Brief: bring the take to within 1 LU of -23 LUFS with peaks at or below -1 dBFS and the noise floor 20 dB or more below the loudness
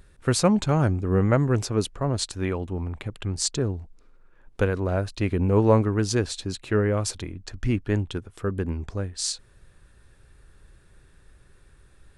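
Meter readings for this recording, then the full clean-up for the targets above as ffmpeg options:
loudness -25.0 LUFS; peak -6.5 dBFS; loudness target -23.0 LUFS
-> -af "volume=2dB"

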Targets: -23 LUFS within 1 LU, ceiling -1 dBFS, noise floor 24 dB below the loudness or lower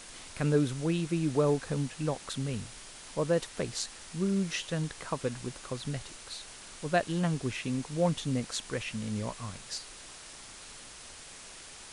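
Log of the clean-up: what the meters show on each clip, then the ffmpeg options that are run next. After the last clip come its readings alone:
noise floor -48 dBFS; noise floor target -57 dBFS; loudness -32.5 LUFS; peak -14.5 dBFS; loudness target -23.0 LUFS
-> -af "afftdn=nr=9:nf=-48"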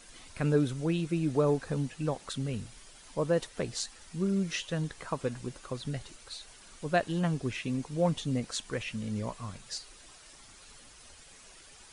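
noise floor -54 dBFS; noise floor target -57 dBFS
-> -af "afftdn=nr=6:nf=-54"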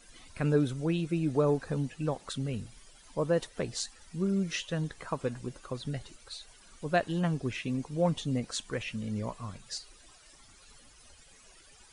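noise floor -58 dBFS; loudness -32.5 LUFS; peak -14.5 dBFS; loudness target -23.0 LUFS
-> -af "volume=9.5dB"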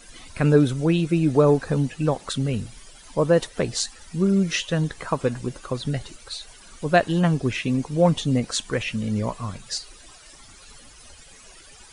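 loudness -23.0 LUFS; peak -5.0 dBFS; noise floor -48 dBFS

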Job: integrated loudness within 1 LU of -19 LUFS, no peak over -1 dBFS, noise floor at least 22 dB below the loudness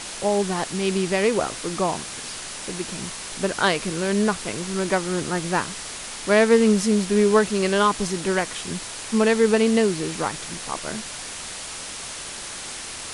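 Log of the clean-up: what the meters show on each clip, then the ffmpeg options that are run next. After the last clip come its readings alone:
noise floor -35 dBFS; noise floor target -45 dBFS; loudness -23.0 LUFS; peak -4.5 dBFS; loudness target -19.0 LUFS
-> -af "afftdn=nr=10:nf=-35"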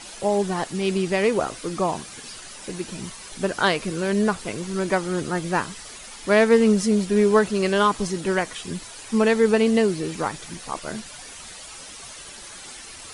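noise floor -41 dBFS; noise floor target -45 dBFS
-> -af "afftdn=nr=6:nf=-41"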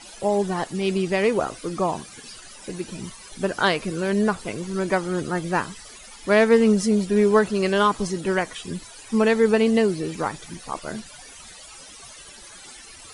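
noise floor -44 dBFS; noise floor target -45 dBFS
-> -af "afftdn=nr=6:nf=-44"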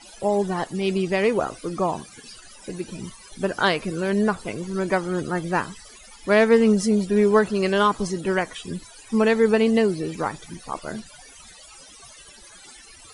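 noise floor -47 dBFS; loudness -22.5 LUFS; peak -5.0 dBFS; loudness target -19.0 LUFS
-> -af "volume=3.5dB"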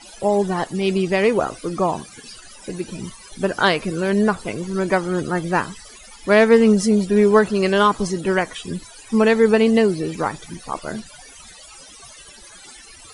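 loudness -19.0 LUFS; peak -1.5 dBFS; noise floor -43 dBFS

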